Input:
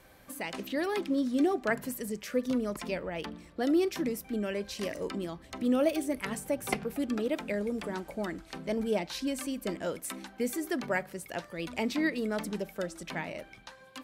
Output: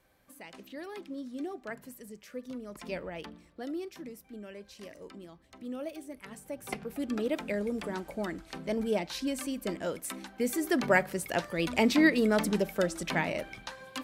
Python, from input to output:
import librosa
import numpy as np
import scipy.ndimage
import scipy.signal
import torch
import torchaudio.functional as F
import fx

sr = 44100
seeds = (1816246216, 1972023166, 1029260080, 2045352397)

y = fx.gain(x, sr, db=fx.line((2.66, -11.0), (2.96, -2.0), (3.86, -12.0), (6.23, -12.0), (7.22, 0.0), (10.33, 0.0), (10.91, 6.5)))